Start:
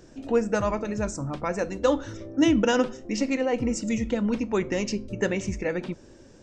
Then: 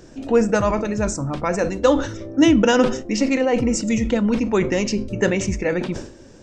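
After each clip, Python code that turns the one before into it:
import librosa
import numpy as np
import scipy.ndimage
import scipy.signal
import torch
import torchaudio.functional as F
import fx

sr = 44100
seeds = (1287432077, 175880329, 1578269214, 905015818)

y = fx.sustainer(x, sr, db_per_s=95.0)
y = F.gain(torch.from_numpy(y), 6.0).numpy()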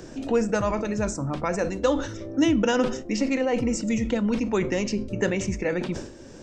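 y = fx.band_squash(x, sr, depth_pct=40)
y = F.gain(torch.from_numpy(y), -5.5).numpy()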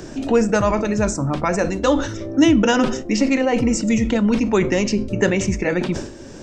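y = fx.notch(x, sr, hz=500.0, q=15.0)
y = F.gain(torch.from_numpy(y), 7.0).numpy()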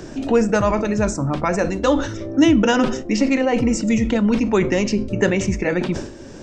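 y = fx.high_shelf(x, sr, hz=6900.0, db=-5.0)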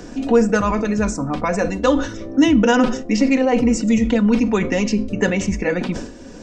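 y = x + 0.51 * np.pad(x, (int(4.1 * sr / 1000.0), 0))[:len(x)]
y = F.gain(torch.from_numpy(y), -1.0).numpy()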